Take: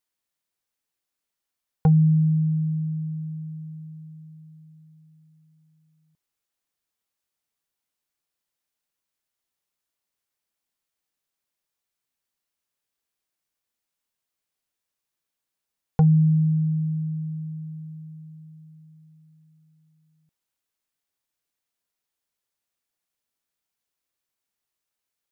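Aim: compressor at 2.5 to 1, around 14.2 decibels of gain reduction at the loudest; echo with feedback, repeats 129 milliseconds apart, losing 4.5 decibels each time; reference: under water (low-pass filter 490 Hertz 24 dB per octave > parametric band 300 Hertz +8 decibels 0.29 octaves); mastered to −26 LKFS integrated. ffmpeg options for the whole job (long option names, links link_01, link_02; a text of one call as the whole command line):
ffmpeg -i in.wav -af "acompressor=threshold=-37dB:ratio=2.5,lowpass=frequency=490:width=0.5412,lowpass=frequency=490:width=1.3066,equalizer=frequency=300:width_type=o:width=0.29:gain=8,aecho=1:1:129|258|387|516|645|774|903|1032|1161:0.596|0.357|0.214|0.129|0.0772|0.0463|0.0278|0.0167|0.01,volume=10.5dB" out.wav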